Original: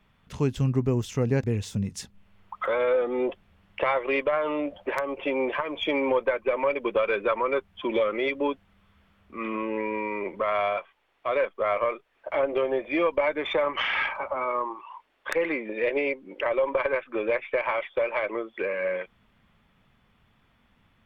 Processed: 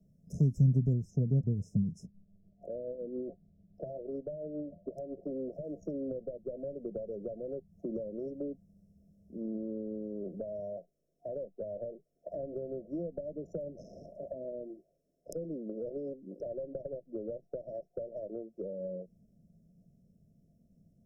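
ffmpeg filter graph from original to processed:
-filter_complex "[0:a]asettb=1/sr,asplit=3[s0][s1][s2];[s0]atrim=end=0.934[s3];[s1]atrim=start=0.93:end=5.31,asetpts=PTS-STARTPTS,afade=t=in:d=0.004:c=qsin,afade=t=out:st=4.376:d=0.004:c=qsin,bandreject=f=520:w=12,tremolo=f=7.1:d=0.44,lowpass=f=1800:p=1[s4];[s2]atrim=start=5.306[s5];[s3][s4]acrossfade=d=0.004:c1=hsin:c2=qsin[s6];[s6][s5]acrossfade=d=0.004:c1=qsin:c2=hsin,afftfilt=real='re*(1-between(b*sr/4096,710,5100))':imag='im*(1-between(b*sr/4096,710,5100))':win_size=4096:overlap=0.75,equalizer=f=170:t=o:w=0.69:g=13.5,acrossover=split=200[s7][s8];[s8]acompressor=threshold=0.0251:ratio=6[s9];[s7][s9]amix=inputs=2:normalize=0,volume=0.531"

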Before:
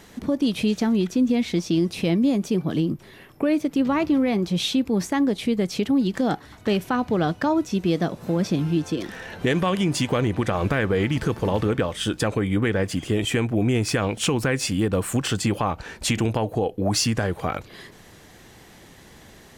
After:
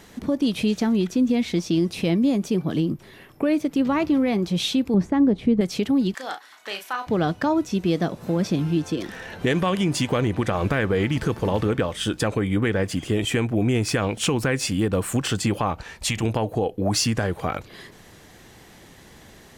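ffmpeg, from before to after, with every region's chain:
-filter_complex "[0:a]asettb=1/sr,asplit=3[s0][s1][s2];[s0]atrim=end=4.944[s3];[s1]atrim=start=4.94:end=5.61,asetpts=PTS-STARTPTS,afade=t=in:d=0.004:c=qsin,afade=t=out:st=0.666:d=0.004:c=qsin,lowpass=f=1000:p=1,lowshelf=f=270:g=7.5[s4];[s2]atrim=start=5.606[s5];[s3][s4]acrossfade=d=0.004:c1=hsin:c2=qsin[s6];[s6][s5]acrossfade=d=0.004:c1=qsin:c2=hsin,asettb=1/sr,asplit=3[s7][s8][s9];[s7]atrim=end=6.144[s10];[s8]atrim=start=6.14:end=7.07,asetpts=PTS-STARTPTS,afade=t=in:d=0.004:c=qsin,afade=t=out:st=0.926:d=0.004:c=qsin,highpass=970,asplit=2[s11][s12];[s12]adelay=35,volume=0.422[s13];[s11][s13]amix=inputs=2:normalize=0,atrim=end_sample=41013[s14];[s9]atrim=start=7.066[s15];[s10][s14]acrossfade=d=0.004:c1=hsin:c2=qsin[s16];[s16][s15]acrossfade=d=0.004:c1=qsin:c2=hsin,asettb=1/sr,asplit=3[s17][s18][s19];[s17]atrim=end=15.834[s20];[s18]atrim=start=15.83:end=16.23,asetpts=PTS-STARTPTS,afade=t=in:d=0.004:c=qsin,afade=t=out:st=0.396:d=0.004:c=qsin,equalizer=f=310:w=0.88:g=-9.5,bandreject=f=1500:w=8.5[s21];[s19]atrim=start=16.226[s22];[s20][s21]acrossfade=d=0.004:c1=hsin:c2=qsin[s23];[s23][s22]acrossfade=d=0.004:c1=qsin:c2=hsin"

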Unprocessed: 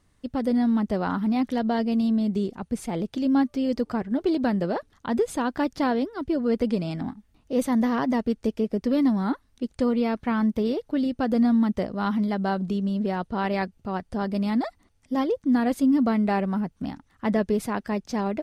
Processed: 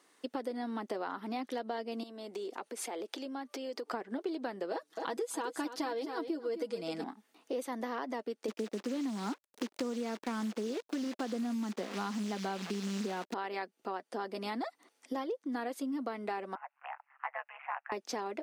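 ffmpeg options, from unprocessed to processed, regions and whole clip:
-filter_complex "[0:a]asettb=1/sr,asplit=3[s0][s1][s2];[s0]atrim=end=2.034[s3];[s1]atrim=start=2.03:end=3.91,asetpts=PTS-STARTPTS,afade=t=in:d=0.004:c=qsin,afade=t=out:st=1.876:d=0.004:c=qsin,highpass=320,acompressor=threshold=0.0126:ratio=5:attack=3.2:release=140:knee=1:detection=peak[s4];[s2]atrim=start=3.906[s5];[s3][s4]acrossfade=d=0.004:c1=hsin:c2=qsin[s6];[s6][s5]acrossfade=d=0.004:c1=qsin:c2=hsin,asettb=1/sr,asplit=3[s7][s8][s9];[s7]atrim=end=4.714[s10];[s8]atrim=start=4.71:end=7.04,asetpts=PTS-STARTPTS,afade=t=in:d=0.004:c=qsin,afade=t=out:st=2.326:d=0.004:c=qsin,bass=f=250:g=8,treble=f=4000:g=7,aecho=1:1:6.2:0.69,atrim=end_sample=102753,aecho=1:1:260:0.266,atrim=end_sample=102753[s11];[s9]atrim=start=7.036[s12];[s10][s11]acrossfade=d=0.004:c1=hsin:c2=qsin[s13];[s13][s12]acrossfade=d=0.004:c1=qsin:c2=hsin,asettb=1/sr,asplit=3[s14][s15][s16];[s14]atrim=end=8.484[s17];[s15]atrim=start=8.48:end=13.34,asetpts=PTS-STARTPTS,afade=t=in:d=0.004:c=qsin,afade=t=out:st=4.856:d=0.004:c=qsin,equalizer=f=200:t=o:w=0.81:g=14,acrusher=bits=6:dc=4:mix=0:aa=0.000001,acrossover=split=7500[s18][s19];[s19]acompressor=threshold=0.00178:ratio=4:attack=1:release=60[s20];[s18][s20]amix=inputs=2:normalize=0[s21];[s16]atrim=start=13.336[s22];[s17][s21]acrossfade=d=0.004:c1=hsin:c2=qsin[s23];[s23][s22]acrossfade=d=0.004:c1=qsin:c2=hsin,asettb=1/sr,asplit=3[s24][s25][s26];[s24]atrim=end=16.554[s27];[s25]atrim=start=16.55:end=17.92,asetpts=PTS-STARTPTS,afade=t=in:d=0.004:c=qsin,afade=t=out:st=1.366:d=0.004:c=qsin,asuperpass=centerf=1400:order=20:qfactor=0.69,tremolo=f=140:d=0.75[s28];[s26]atrim=start=17.916[s29];[s27][s28]acrossfade=d=0.004:c1=hsin:c2=qsin[s30];[s30][s29]acrossfade=d=0.004:c1=qsin:c2=hsin,highpass=f=330:w=0.5412,highpass=f=330:w=1.3066,bandreject=f=600:w=12,acompressor=threshold=0.01:ratio=6,volume=1.78"

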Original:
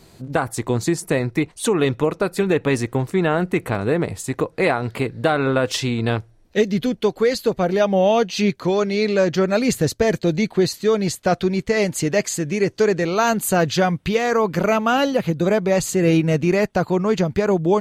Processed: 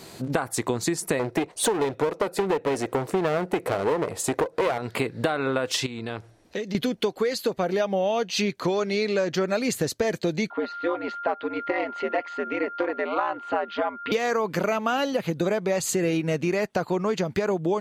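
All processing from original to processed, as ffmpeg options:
-filter_complex "[0:a]asettb=1/sr,asplit=3[s0][s1][s2];[s0]atrim=end=1.194[s3];[s1]atrim=start=1.19:end=4.78,asetpts=PTS-STARTPTS,afade=t=in:d=0.004:c=qsin,afade=t=out:st=3.586:d=0.004:c=qsin,equalizer=f=530:t=o:w=1.7:g=10.5,aeval=exprs='clip(val(0),-1,0.0891)':c=same[s4];[s2]atrim=start=4.776[s5];[s3][s4]acrossfade=d=0.004:c1=hsin:c2=qsin[s6];[s6][s5]acrossfade=d=0.004:c1=qsin:c2=hsin,asettb=1/sr,asplit=3[s7][s8][s9];[s7]atrim=end=5.864[s10];[s8]atrim=start=5.86:end=6.75,asetpts=PTS-STARTPTS,afade=t=in:d=0.004:c=qsin,afade=t=out:st=0.886:d=0.004:c=qsin,lowpass=12000,acompressor=threshold=0.0251:ratio=12:attack=3.2:release=140:knee=1:detection=peak[s11];[s9]atrim=start=6.746[s12];[s10][s11]acrossfade=d=0.004:c1=hsin:c2=qsin[s13];[s13][s12]acrossfade=d=0.004:c1=qsin:c2=hsin,asettb=1/sr,asplit=3[s14][s15][s16];[s14]atrim=end=10.504[s17];[s15]atrim=start=10.5:end=14.12,asetpts=PTS-STARTPTS,afade=t=in:d=0.004:c=qsin,afade=t=out:st=3.616:d=0.004:c=qsin,aeval=exprs='val(0)*sin(2*PI*85*n/s)':c=same,highpass=450,equalizer=f=500:t=q:w=4:g=-4,equalizer=f=1000:t=q:w=4:g=4,equalizer=f=1600:t=q:w=4:g=-6,equalizer=f=2400:t=q:w=4:g=-6,lowpass=f=2600:w=0.5412,lowpass=f=2600:w=1.3066,aeval=exprs='val(0)+0.0112*sin(2*PI*1400*n/s)':c=same[s18];[s16]atrim=start=14.116[s19];[s17][s18]acrossfade=d=0.004:c1=hsin:c2=qsin[s20];[s20][s19]acrossfade=d=0.004:c1=qsin:c2=hsin,highpass=f=270:p=1,acompressor=threshold=0.0316:ratio=6,volume=2.37"

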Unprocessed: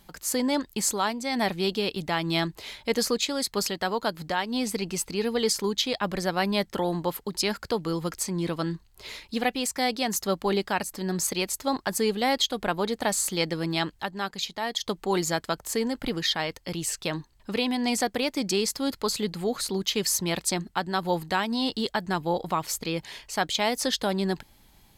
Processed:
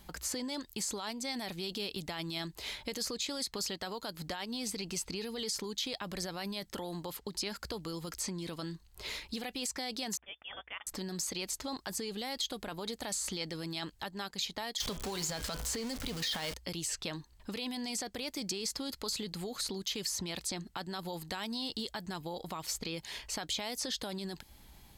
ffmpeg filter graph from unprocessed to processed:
-filter_complex "[0:a]asettb=1/sr,asplit=3[s0][s1][s2];[s0]atrim=end=10.174[s3];[s1]atrim=start=10.17:end=10.87,asetpts=PTS-STARTPTS,afade=t=in:d=0.004:c=qsin,afade=t=out:st=0.696:d=0.004:c=qsin,aderivative,lowpass=f=3100:t=q:w=0.5098,lowpass=f=3100:t=q:w=0.6013,lowpass=f=3100:t=q:w=0.9,lowpass=f=3100:t=q:w=2.563,afreqshift=-3700[s4];[s2]atrim=start=10.866[s5];[s3][s4]acrossfade=d=0.004:c1=hsin:c2=qsin[s6];[s6][s5]acrossfade=d=0.004:c1=qsin:c2=hsin,asettb=1/sr,asplit=3[s7][s8][s9];[s7]atrim=end=14.804[s10];[s8]atrim=start=14.8:end=16.54,asetpts=PTS-STARTPTS,afade=t=in:d=0.004:c=qsin,afade=t=out:st=1.736:d=0.004:c=qsin,aeval=exprs='val(0)+0.5*0.0355*sgn(val(0))':c=same,bandreject=f=340:w=5.9,bandreject=f=125:t=h:w=4,bandreject=f=250:t=h:w=4,bandreject=f=375:t=h:w=4,bandreject=f=500:t=h:w=4,bandreject=f=625:t=h:w=4,bandreject=f=750:t=h:w=4,bandreject=f=875:t=h:w=4,bandreject=f=1000:t=h:w=4,bandreject=f=1125:t=h:w=4,bandreject=f=1250:t=h:w=4,bandreject=f=1375:t=h:w=4,bandreject=f=1500:t=h:w=4,bandreject=f=1625:t=h:w=4,bandreject=f=1750:t=h:w=4,bandreject=f=1875:t=h:w=4,bandreject=f=2000:t=h:w=4,bandreject=f=2125:t=h:w=4,bandreject=f=2250:t=h:w=4,bandreject=f=2375:t=h:w=4,bandreject=f=2500:t=h:w=4,bandreject=f=2625:t=h:w=4,bandreject=f=2750:t=h:w=4,bandreject=f=2875:t=h:w=4,bandreject=f=3000:t=h:w=4,bandreject=f=3125:t=h:w=4,bandreject=f=3250:t=h:w=4,bandreject=f=3375:t=h:w=4,bandreject=f=3500:t=h:w=4[s11];[s9]atrim=start=16.536[s12];[s10][s11]acrossfade=d=0.004:c1=hsin:c2=qsin[s13];[s13][s12]acrossfade=d=0.004:c1=qsin:c2=hsin,equalizer=f=61:t=o:w=0.22:g=13,alimiter=limit=0.0891:level=0:latency=1:release=15,acrossover=split=3300|7900[s14][s15][s16];[s14]acompressor=threshold=0.0112:ratio=4[s17];[s15]acompressor=threshold=0.0178:ratio=4[s18];[s16]acompressor=threshold=0.00398:ratio=4[s19];[s17][s18][s19]amix=inputs=3:normalize=0"

